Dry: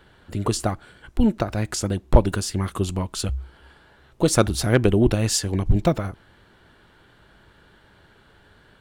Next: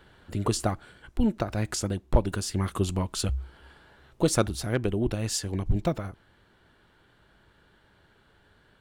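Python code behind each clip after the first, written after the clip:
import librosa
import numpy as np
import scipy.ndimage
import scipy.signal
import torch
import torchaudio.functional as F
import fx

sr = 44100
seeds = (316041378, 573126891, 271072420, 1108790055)

y = fx.rider(x, sr, range_db=4, speed_s=0.5)
y = y * 10.0 ** (-6.0 / 20.0)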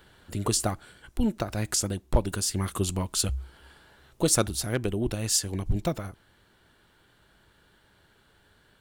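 y = fx.high_shelf(x, sr, hz=5000.0, db=11.5)
y = y * 10.0 ** (-1.5 / 20.0)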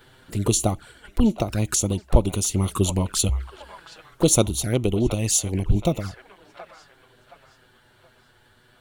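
y = fx.echo_wet_bandpass(x, sr, ms=722, feedback_pct=37, hz=1400.0, wet_db=-9)
y = fx.env_flanger(y, sr, rest_ms=8.8, full_db=-25.0)
y = y * 10.0 ** (7.0 / 20.0)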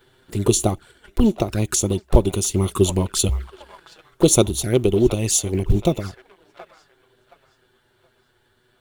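y = fx.law_mismatch(x, sr, coded='A')
y = fx.small_body(y, sr, hz=(380.0, 3500.0), ring_ms=45, db=8)
y = y * 10.0 ** (2.0 / 20.0)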